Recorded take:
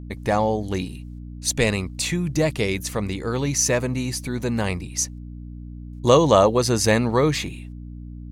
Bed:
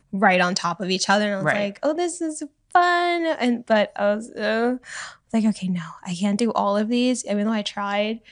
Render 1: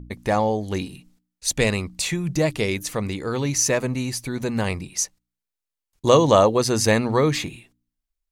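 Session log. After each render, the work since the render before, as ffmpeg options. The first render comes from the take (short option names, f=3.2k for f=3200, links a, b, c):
-af "bandreject=f=60:t=h:w=4,bandreject=f=120:t=h:w=4,bandreject=f=180:t=h:w=4,bandreject=f=240:t=h:w=4,bandreject=f=300:t=h:w=4"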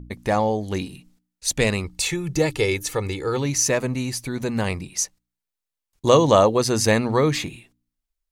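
-filter_complex "[0:a]asettb=1/sr,asplit=3[a][b][c];[a]atrim=end=1.844[d];[b]atrim=start=1.84:end=3.37,asetpts=PTS-STARTPTS,afade=t=in:d=0.004:c=qsin,afade=t=out:st=1.526:d=0.004:c=qsin,aecho=1:1:2.3:0.61,atrim=end_sample=67473[e];[c]atrim=start=3.366[f];[d][e]acrossfade=d=0.004:c1=hsin:c2=qsin[g];[g][f]acrossfade=d=0.004:c1=qsin:c2=hsin"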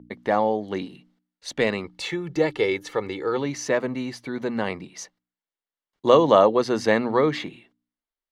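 -filter_complex "[0:a]acrossover=split=180 3900:gain=0.1 1 0.0794[a][b][c];[a][b][c]amix=inputs=3:normalize=0,bandreject=f=2.5k:w=7.9"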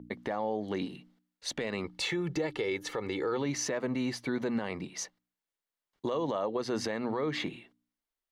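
-af "acompressor=threshold=-25dB:ratio=6,alimiter=limit=-22.5dB:level=0:latency=1:release=62"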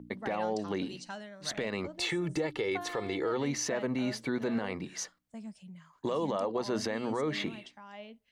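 -filter_complex "[1:a]volume=-24dB[a];[0:a][a]amix=inputs=2:normalize=0"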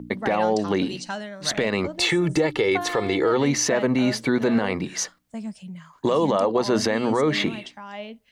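-af "volume=11dB"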